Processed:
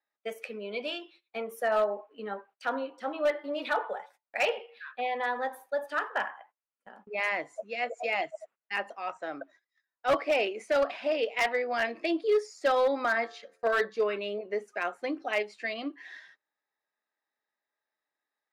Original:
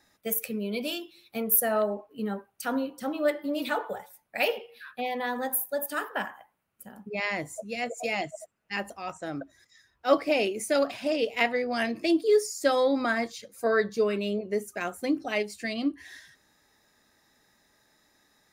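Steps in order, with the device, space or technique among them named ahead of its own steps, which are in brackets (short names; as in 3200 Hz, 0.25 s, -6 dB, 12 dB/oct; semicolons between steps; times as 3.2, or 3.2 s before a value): walkie-talkie (BPF 510–2800 Hz; hard clip -21.5 dBFS, distortion -16 dB; gate -57 dBFS, range -22 dB); 13.08–13.85 de-hum 88.31 Hz, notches 21; gain +2 dB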